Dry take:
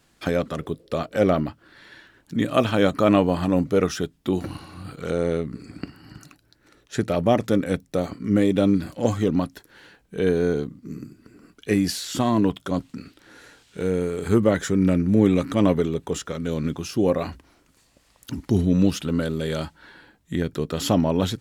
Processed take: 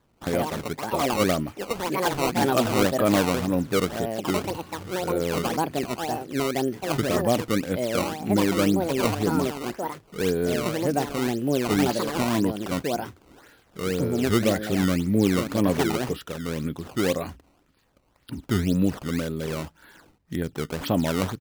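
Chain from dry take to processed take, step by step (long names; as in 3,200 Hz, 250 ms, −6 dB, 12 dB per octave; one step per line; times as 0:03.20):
downsampling to 11,025 Hz
delay with pitch and tempo change per echo 132 ms, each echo +5 semitones, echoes 2
sample-and-hold swept by an LFO 15×, swing 160% 1.9 Hz
level −3.5 dB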